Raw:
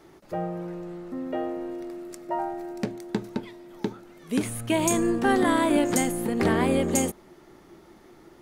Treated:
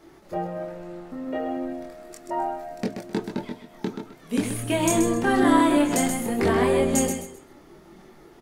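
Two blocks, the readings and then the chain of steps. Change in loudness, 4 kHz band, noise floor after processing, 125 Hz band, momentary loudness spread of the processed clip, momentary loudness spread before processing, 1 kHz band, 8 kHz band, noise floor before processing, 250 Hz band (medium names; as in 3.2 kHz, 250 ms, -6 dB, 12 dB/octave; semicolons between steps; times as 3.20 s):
+2.5 dB, +2.0 dB, -51 dBFS, +1.0 dB, 18 LU, 14 LU, +2.5 dB, +1.5 dB, -53 dBFS, +2.0 dB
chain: feedback delay 130 ms, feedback 26%, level -7 dB; chorus voices 6, 0.26 Hz, delay 24 ms, depth 3.6 ms; trim +4 dB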